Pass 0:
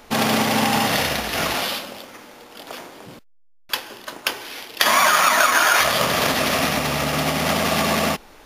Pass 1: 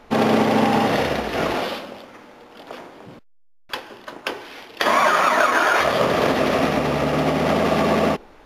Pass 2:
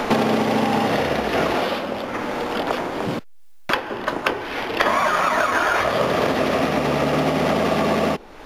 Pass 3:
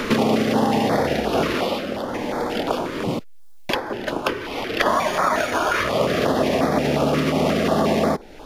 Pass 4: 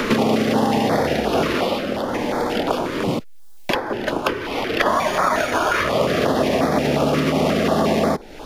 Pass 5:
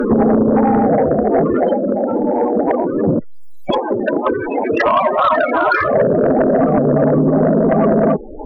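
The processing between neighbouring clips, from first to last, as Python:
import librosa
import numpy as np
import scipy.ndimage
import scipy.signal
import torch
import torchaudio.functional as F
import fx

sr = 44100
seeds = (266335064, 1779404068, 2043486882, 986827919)

y1 = fx.dynamic_eq(x, sr, hz=400.0, q=1.1, threshold_db=-38.0, ratio=4.0, max_db=8)
y1 = fx.lowpass(y1, sr, hz=1800.0, slope=6)
y2 = fx.band_squash(y1, sr, depth_pct=100)
y2 = y2 * librosa.db_to_amplitude(-1.5)
y3 = fx.filter_held_notch(y2, sr, hz=5.6, low_hz=770.0, high_hz=2800.0)
y3 = y3 * librosa.db_to_amplitude(1.5)
y4 = fx.band_squash(y3, sr, depth_pct=40)
y4 = y4 * librosa.db_to_amplitude(1.0)
y5 = fx.spec_topn(y4, sr, count=16)
y5 = fx.fold_sine(y5, sr, drive_db=5, ceiling_db=-7.5)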